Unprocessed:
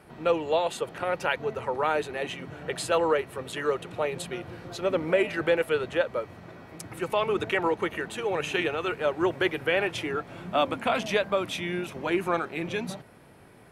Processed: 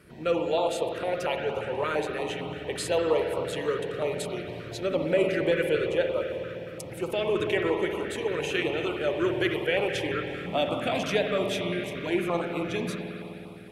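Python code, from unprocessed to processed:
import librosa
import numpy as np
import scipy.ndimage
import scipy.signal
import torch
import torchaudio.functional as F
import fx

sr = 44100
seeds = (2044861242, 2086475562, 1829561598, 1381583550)

y = fx.rev_spring(x, sr, rt60_s=3.3, pass_ms=(52,), chirp_ms=45, drr_db=2.5)
y = fx.filter_held_notch(y, sr, hz=8.7, low_hz=810.0, high_hz=1700.0)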